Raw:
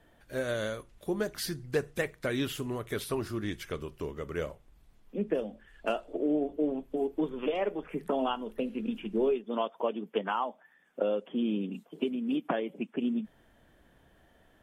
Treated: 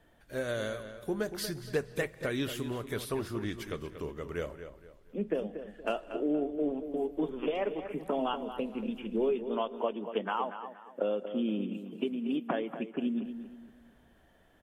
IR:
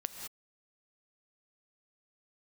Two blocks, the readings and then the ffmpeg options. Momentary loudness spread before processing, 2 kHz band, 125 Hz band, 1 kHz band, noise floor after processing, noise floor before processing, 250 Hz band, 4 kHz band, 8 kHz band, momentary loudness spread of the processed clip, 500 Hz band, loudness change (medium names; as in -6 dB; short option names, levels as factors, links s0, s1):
8 LU, -1.5 dB, -1.0 dB, -1.0 dB, -63 dBFS, -64 dBFS, -1.5 dB, -1.5 dB, no reading, 9 LU, -1.0 dB, -1.5 dB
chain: -filter_complex "[0:a]asplit=2[s0][s1];[s1]adelay=235,lowpass=f=3600:p=1,volume=0.316,asplit=2[s2][s3];[s3]adelay=235,lowpass=f=3600:p=1,volume=0.34,asplit=2[s4][s5];[s5]adelay=235,lowpass=f=3600:p=1,volume=0.34,asplit=2[s6][s7];[s7]adelay=235,lowpass=f=3600:p=1,volume=0.34[s8];[s0][s2][s4][s6][s8]amix=inputs=5:normalize=0,asplit=2[s9][s10];[1:a]atrim=start_sample=2205[s11];[s10][s11]afir=irnorm=-1:irlink=0,volume=0.188[s12];[s9][s12]amix=inputs=2:normalize=0,volume=0.708"